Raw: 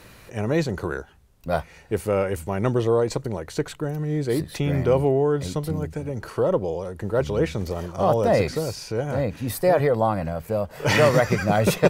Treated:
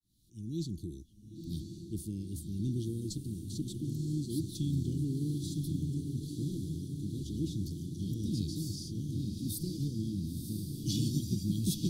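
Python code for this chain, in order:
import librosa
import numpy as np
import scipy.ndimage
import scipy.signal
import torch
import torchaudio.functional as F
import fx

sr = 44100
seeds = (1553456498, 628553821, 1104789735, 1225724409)

p1 = fx.fade_in_head(x, sr, length_s=0.8)
p2 = scipy.signal.sosfilt(scipy.signal.cheby1(5, 1.0, [330.0, 3400.0], 'bandstop', fs=sr, output='sos'), p1)
p3 = fx.peak_eq(p2, sr, hz=9700.0, db=3.5, octaves=0.34)
p4 = p3 + fx.echo_diffused(p3, sr, ms=999, feedback_pct=66, wet_db=-6.0, dry=0)
y = F.gain(torch.from_numpy(p4), -8.0).numpy()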